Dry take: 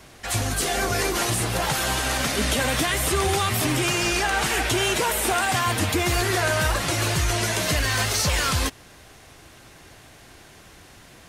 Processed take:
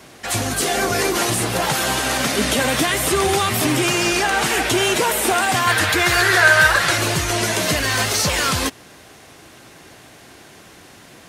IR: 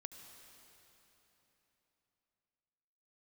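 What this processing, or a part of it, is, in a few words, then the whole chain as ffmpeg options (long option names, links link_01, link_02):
filter by subtraction: -filter_complex "[0:a]asettb=1/sr,asplit=3[link_01][link_02][link_03];[link_01]atrim=end=5.674[link_04];[link_02]atrim=start=5.67:end=6.98,asetpts=PTS-STARTPTS,afade=type=in:duration=0.004:curve=qsin,afade=type=out:start_time=1.306:duration=0.004:curve=qsin,equalizer=frequency=250:width_type=o:width=0.67:gain=-12,equalizer=frequency=1600:width_type=o:width=0.67:gain=11,equalizer=frequency=4000:width_type=o:width=0.67:gain=4[link_05];[link_03]atrim=start=6.976[link_06];[link_04][link_05]acrossfade=duration=0.004:curve1=hsin:curve2=qsin[link_07];[link_07][link_06]acrossfade=duration=0.004:curve1=qsin:curve2=hsin,asplit=2[link_08][link_09];[link_09]lowpass=240,volume=-1[link_10];[link_08][link_10]amix=inputs=2:normalize=0,volume=4dB"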